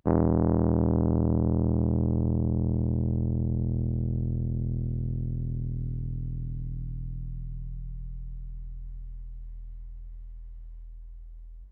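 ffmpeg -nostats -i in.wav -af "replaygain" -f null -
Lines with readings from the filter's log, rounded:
track_gain = +10.9 dB
track_peak = 0.236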